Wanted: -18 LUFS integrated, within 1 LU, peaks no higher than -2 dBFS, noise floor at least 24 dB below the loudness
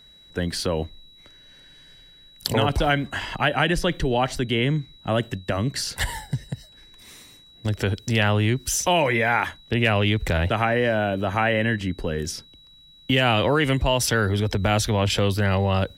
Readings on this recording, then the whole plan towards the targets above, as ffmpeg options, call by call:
steady tone 3900 Hz; tone level -49 dBFS; loudness -23.0 LUFS; peak -4.0 dBFS; loudness target -18.0 LUFS
-> -af "bandreject=f=3.9k:w=30"
-af "volume=5dB,alimiter=limit=-2dB:level=0:latency=1"

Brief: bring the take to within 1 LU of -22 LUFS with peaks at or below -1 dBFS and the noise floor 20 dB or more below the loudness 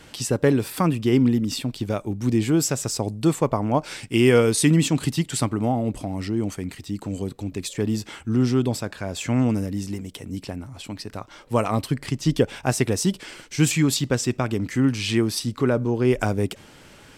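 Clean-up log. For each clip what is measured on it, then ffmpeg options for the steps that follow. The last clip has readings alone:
loudness -23.0 LUFS; peak -5.0 dBFS; loudness target -22.0 LUFS
-> -af "volume=1dB"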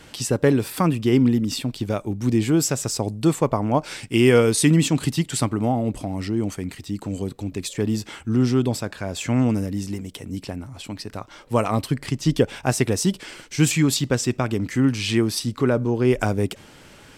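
loudness -22.0 LUFS; peak -4.0 dBFS; noise floor -47 dBFS

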